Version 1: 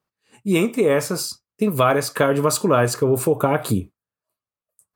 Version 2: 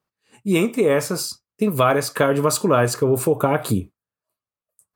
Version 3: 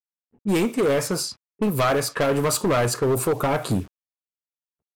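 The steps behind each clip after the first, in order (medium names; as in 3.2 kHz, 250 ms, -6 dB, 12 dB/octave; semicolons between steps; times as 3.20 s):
no audible change
hard clipper -17 dBFS, distortion -9 dB; bit crusher 8-bit; level-controlled noise filter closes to 330 Hz, open at -20.5 dBFS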